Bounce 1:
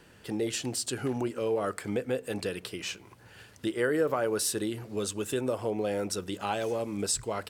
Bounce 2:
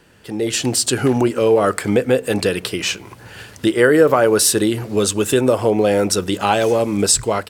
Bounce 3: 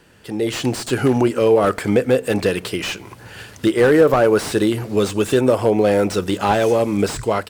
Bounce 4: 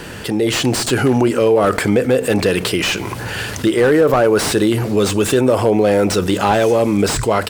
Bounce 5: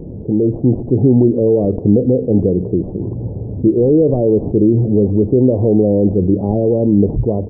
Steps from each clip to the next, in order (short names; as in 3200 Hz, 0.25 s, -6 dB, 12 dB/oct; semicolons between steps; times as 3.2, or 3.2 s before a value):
AGC gain up to 11 dB; gain +4 dB
slew limiter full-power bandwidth 240 Hz
fast leveller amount 50%; gain -1 dB
Gaussian blur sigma 19 samples; gain +6.5 dB